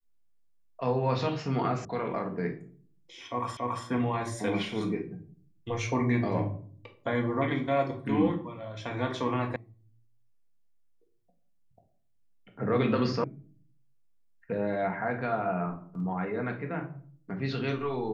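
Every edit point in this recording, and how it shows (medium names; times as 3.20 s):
1.85 s: sound stops dead
3.57 s: repeat of the last 0.28 s
9.56 s: sound stops dead
13.24 s: sound stops dead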